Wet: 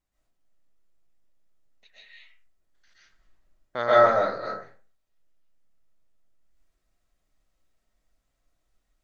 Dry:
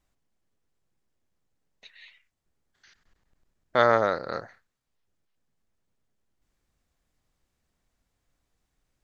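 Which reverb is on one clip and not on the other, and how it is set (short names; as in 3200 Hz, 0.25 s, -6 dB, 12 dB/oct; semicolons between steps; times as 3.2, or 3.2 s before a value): digital reverb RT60 0.4 s, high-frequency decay 0.55×, pre-delay 95 ms, DRR -8.5 dB; gain -9 dB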